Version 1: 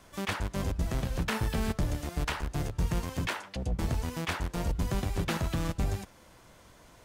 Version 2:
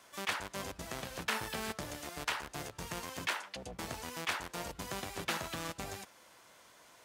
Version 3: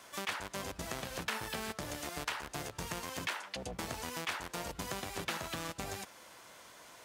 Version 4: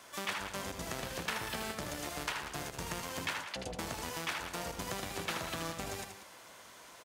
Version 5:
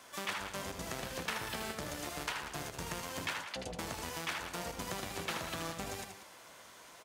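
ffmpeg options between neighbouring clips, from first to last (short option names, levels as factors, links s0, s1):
-af "highpass=f=810:p=1"
-af "acompressor=threshold=0.00794:ratio=2.5,volume=1.78"
-af "aecho=1:1:78.72|189.5:0.447|0.251"
-af "flanger=delay=3.8:depth=9.7:regen=83:speed=0.84:shape=sinusoidal,volume=1.5"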